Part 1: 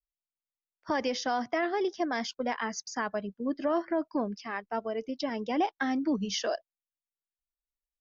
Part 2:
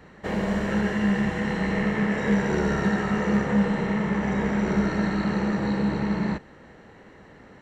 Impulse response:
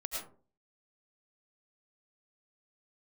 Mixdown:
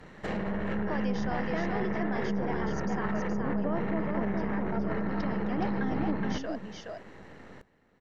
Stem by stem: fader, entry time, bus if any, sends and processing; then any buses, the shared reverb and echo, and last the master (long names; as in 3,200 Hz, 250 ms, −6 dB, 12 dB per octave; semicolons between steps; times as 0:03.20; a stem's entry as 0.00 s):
−6.5 dB, 0.00 s, no send, echo send −4 dB, parametric band 5,300 Hz −7.5 dB 1.4 octaves
+1.0 dB, 0.00 s, send −17.5 dB, echo send −16.5 dB, gain on one half-wave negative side −7 dB; treble cut that deepens with the level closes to 860 Hz, closed at −19.5 dBFS; brickwall limiter −25 dBFS, peak gain reduction 11.5 dB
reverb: on, RT60 0.40 s, pre-delay 65 ms
echo: single-tap delay 421 ms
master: no processing